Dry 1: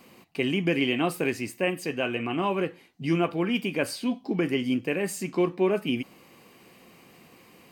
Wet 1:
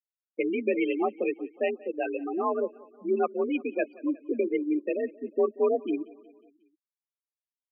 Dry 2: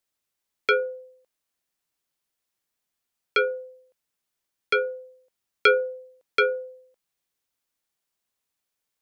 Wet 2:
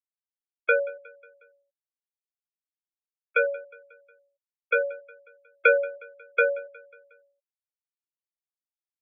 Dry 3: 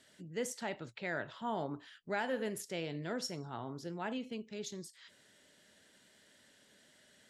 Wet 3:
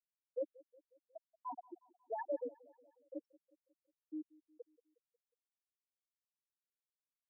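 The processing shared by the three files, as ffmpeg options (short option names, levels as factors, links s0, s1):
-filter_complex "[0:a]afftfilt=real='re*gte(hypot(re,im),0.126)':imag='im*gte(hypot(re,im),0.126)':win_size=1024:overlap=0.75,asplit=2[s0][s1];[s1]aecho=0:1:181|362|543|724:0.075|0.0427|0.0244|0.0139[s2];[s0][s2]amix=inputs=2:normalize=0,highpass=f=210:t=q:w=0.5412,highpass=f=210:t=q:w=1.307,lowpass=f=2500:t=q:w=0.5176,lowpass=f=2500:t=q:w=0.7071,lowpass=f=2500:t=q:w=1.932,afreqshift=51"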